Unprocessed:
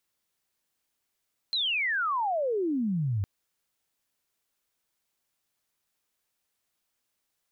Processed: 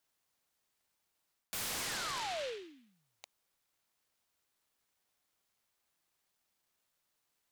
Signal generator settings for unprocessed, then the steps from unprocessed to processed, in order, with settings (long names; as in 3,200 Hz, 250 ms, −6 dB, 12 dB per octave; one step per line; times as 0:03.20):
glide logarithmic 4,200 Hz → 93 Hz −25 dBFS → −25 dBFS 1.71 s
high-pass filter 670 Hz 24 dB per octave
reversed playback
downward compressor 12 to 1, threshold −37 dBFS
reversed playback
short delay modulated by noise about 2,600 Hz, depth 0.14 ms